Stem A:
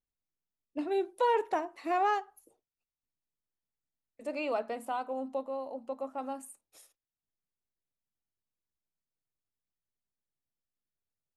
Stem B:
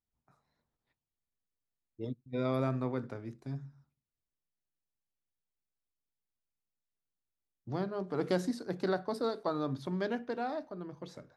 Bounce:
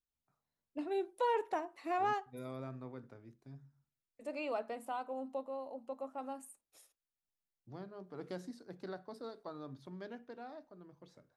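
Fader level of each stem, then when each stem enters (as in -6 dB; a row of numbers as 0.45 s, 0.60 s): -5.5 dB, -13.0 dB; 0.00 s, 0.00 s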